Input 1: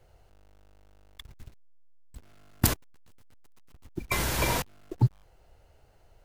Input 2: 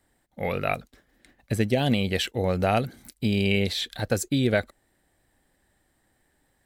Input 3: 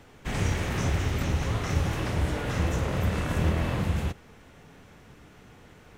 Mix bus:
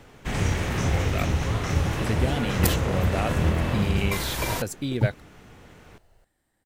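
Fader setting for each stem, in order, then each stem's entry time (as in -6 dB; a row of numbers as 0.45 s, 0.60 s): -1.0 dB, -5.5 dB, +2.5 dB; 0.00 s, 0.50 s, 0.00 s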